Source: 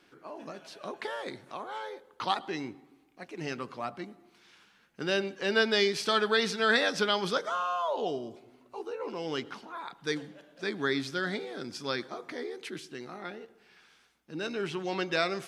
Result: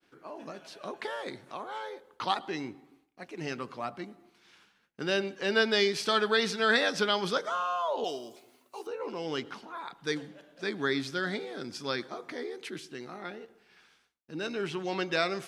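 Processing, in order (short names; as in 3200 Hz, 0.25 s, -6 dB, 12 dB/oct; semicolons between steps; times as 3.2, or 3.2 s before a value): 8.04–8.87 RIAA curve recording; expander -58 dBFS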